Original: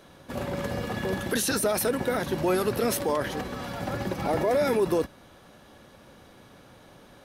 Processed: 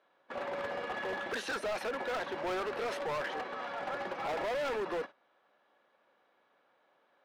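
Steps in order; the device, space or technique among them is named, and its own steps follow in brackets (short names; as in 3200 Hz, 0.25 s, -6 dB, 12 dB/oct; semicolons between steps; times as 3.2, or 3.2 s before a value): walkie-talkie (BPF 590–2400 Hz; hard clip -32 dBFS, distortion -7 dB; gate -45 dBFS, range -14 dB)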